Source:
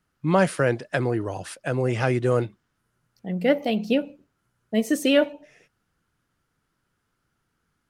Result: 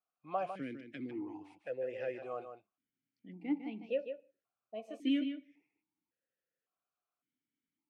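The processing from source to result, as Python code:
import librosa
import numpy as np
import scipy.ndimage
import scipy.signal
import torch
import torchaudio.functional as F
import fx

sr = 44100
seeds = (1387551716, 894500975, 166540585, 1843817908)

y = x + 10.0 ** (-8.5 / 20.0) * np.pad(x, (int(152 * sr / 1000.0), 0))[:len(x)]
y = fx.vowel_held(y, sr, hz=1.8)
y = y * librosa.db_to_amplitude(-6.5)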